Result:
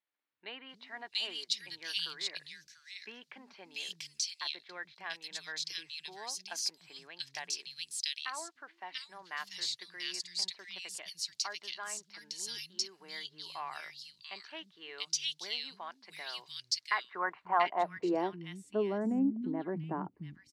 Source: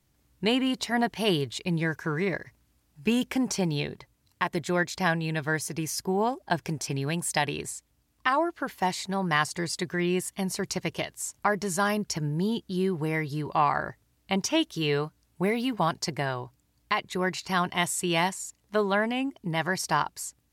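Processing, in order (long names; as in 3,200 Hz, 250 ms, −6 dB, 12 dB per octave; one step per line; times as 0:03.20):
band-pass filter sweep 4,400 Hz → 270 Hz, 0:16.15–0:18.52
tape wow and flutter 23 cents
three-band delay without the direct sound mids, lows, highs 300/690 ms, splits 200/2,200 Hz
level +3.5 dB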